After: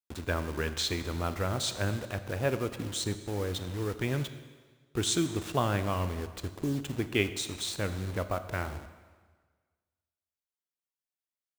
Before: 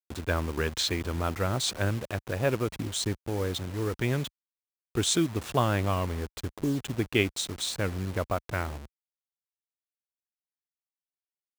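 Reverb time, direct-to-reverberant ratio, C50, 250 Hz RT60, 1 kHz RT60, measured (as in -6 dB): 1.5 s, 10.0 dB, 12.0 dB, 1.4 s, 1.5 s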